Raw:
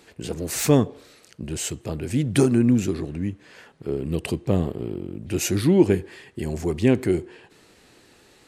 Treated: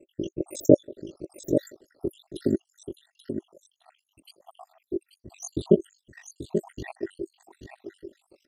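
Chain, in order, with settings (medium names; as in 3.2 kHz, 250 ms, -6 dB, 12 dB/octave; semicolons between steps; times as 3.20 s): random holes in the spectrogram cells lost 83%; peaking EQ 2.1 kHz -10 dB 0.5 oct; in parallel at 0 dB: level held to a coarse grid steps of 18 dB; on the sum: small resonant body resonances 360/560/1900 Hz, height 16 dB, ringing for 40 ms; on a send: delay 835 ms -8 dB; on the sum: ring modulator 24 Hz; trim -6.5 dB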